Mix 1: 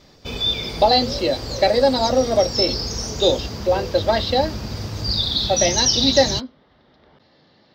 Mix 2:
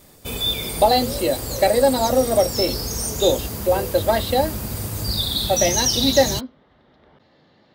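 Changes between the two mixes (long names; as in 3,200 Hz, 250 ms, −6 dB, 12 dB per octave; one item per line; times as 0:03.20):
background: add high-shelf EQ 6,800 Hz +8.5 dB
master: add high shelf with overshoot 7,200 Hz +12 dB, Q 3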